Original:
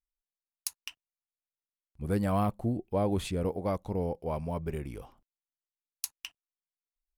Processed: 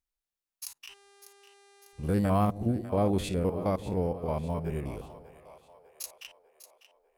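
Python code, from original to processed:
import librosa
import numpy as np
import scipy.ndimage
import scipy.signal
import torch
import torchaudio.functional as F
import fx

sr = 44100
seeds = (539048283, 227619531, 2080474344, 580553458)

y = fx.spec_steps(x, sr, hold_ms=50)
y = fx.dmg_buzz(y, sr, base_hz=400.0, harmonics=28, level_db=-63.0, tilt_db=-4, odd_only=False, at=(0.88, 2.15), fade=0.02)
y = fx.echo_split(y, sr, split_hz=510.0, low_ms=162, high_ms=598, feedback_pct=52, wet_db=-14.0)
y = y * 10.0 ** (3.0 / 20.0)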